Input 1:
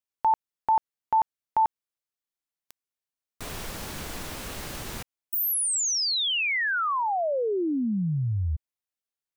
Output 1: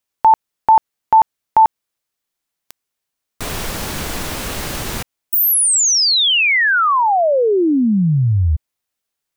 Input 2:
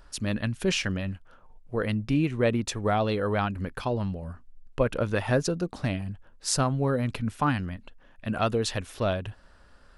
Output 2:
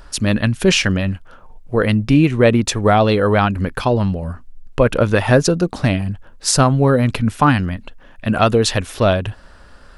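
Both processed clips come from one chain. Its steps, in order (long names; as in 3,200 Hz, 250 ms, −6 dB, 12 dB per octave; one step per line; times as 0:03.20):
boost into a limiter +13 dB
level −1 dB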